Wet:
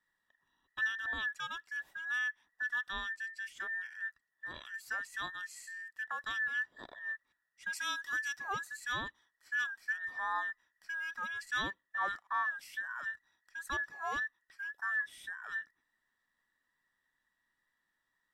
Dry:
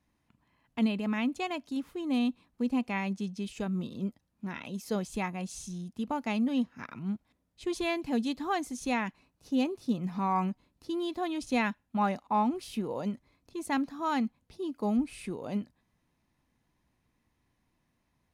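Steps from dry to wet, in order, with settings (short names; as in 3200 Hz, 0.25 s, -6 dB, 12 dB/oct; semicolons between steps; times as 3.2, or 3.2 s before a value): band inversion scrambler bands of 2000 Hz; 7.73–8.4 tone controls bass -3 dB, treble +7 dB; gain -7 dB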